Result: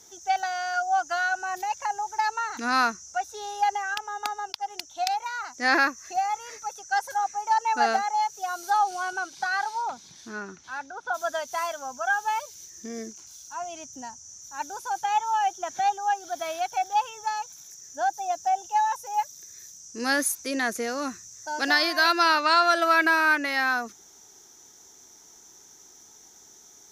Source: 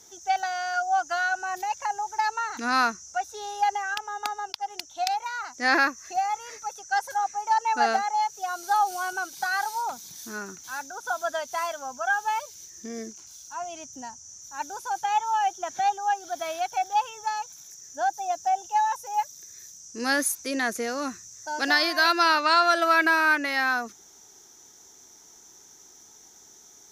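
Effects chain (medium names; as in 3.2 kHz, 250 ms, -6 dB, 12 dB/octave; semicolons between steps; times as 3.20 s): 8.70–11.13 s: low-pass 7.4 kHz -> 3.1 kHz 12 dB/octave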